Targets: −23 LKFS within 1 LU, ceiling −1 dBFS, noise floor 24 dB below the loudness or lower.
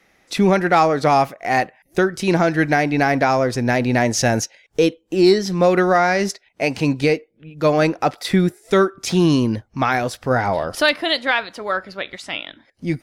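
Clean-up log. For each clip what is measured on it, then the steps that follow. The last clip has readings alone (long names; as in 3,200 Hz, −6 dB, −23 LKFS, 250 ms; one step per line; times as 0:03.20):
integrated loudness −18.5 LKFS; sample peak −5.0 dBFS; target loudness −23.0 LKFS
→ level −4.5 dB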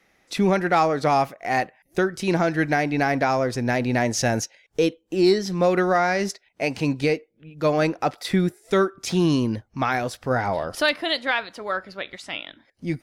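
integrated loudness −23.0 LKFS; sample peak −9.5 dBFS; background noise floor −66 dBFS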